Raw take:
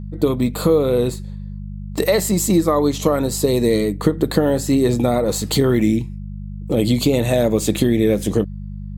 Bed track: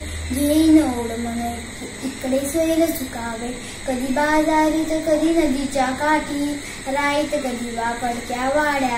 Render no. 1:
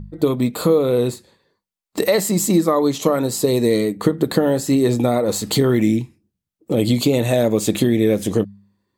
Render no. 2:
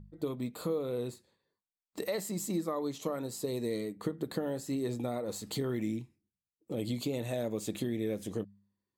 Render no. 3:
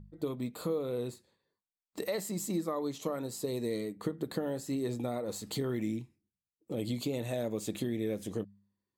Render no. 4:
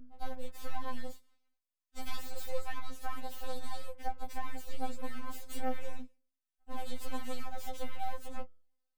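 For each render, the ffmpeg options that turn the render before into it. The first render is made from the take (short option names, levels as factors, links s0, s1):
-af "bandreject=f=50:t=h:w=4,bandreject=f=100:t=h:w=4,bandreject=f=150:t=h:w=4,bandreject=f=200:t=h:w=4"
-af "volume=0.133"
-af anull
-af "aeval=exprs='abs(val(0))':c=same,afftfilt=real='re*3.46*eq(mod(b,12),0)':imag='im*3.46*eq(mod(b,12),0)':win_size=2048:overlap=0.75"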